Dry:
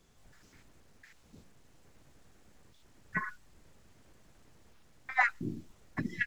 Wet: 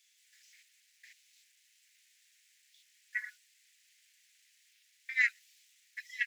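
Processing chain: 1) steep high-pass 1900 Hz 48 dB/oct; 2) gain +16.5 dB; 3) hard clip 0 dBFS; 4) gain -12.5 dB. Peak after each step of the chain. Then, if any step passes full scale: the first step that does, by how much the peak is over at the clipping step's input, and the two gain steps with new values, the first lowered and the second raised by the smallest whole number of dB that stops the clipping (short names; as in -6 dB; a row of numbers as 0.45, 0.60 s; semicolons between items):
-20.0, -3.5, -3.5, -16.0 dBFS; no overload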